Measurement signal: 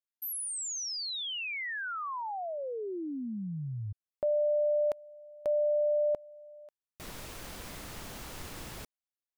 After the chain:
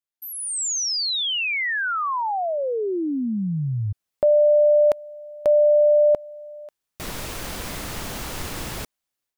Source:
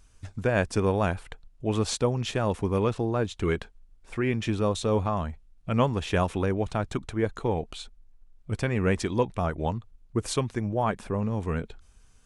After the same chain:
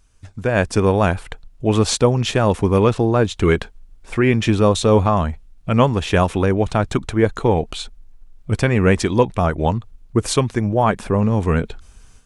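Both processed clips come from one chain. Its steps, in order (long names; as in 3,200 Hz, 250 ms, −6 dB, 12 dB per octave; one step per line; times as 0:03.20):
automatic gain control gain up to 12 dB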